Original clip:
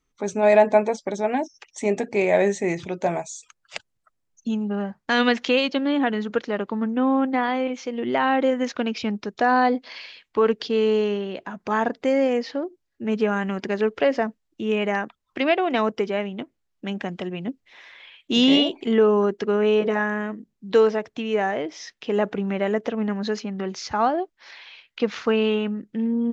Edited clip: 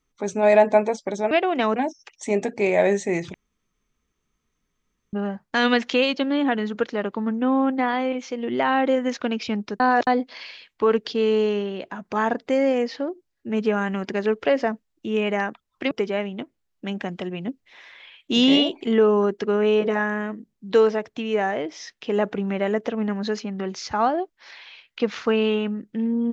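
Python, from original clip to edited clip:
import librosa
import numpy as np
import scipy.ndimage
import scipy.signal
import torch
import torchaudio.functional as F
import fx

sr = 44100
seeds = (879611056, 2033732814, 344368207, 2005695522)

y = fx.edit(x, sr, fx.room_tone_fill(start_s=2.89, length_s=1.79),
    fx.reverse_span(start_s=9.35, length_s=0.27),
    fx.move(start_s=15.46, length_s=0.45, to_s=1.31), tone=tone)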